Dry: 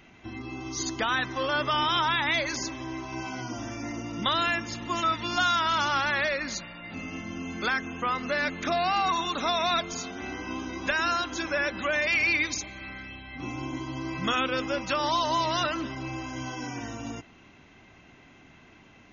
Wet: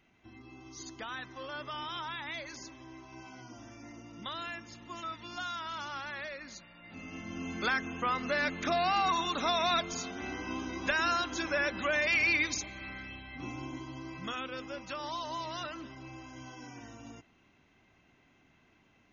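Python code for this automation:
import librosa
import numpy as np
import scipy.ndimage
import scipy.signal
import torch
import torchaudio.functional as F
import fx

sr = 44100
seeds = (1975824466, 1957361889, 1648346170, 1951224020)

y = fx.gain(x, sr, db=fx.line((6.62, -14.0), (7.44, -3.0), (13.15, -3.0), (14.39, -12.0)))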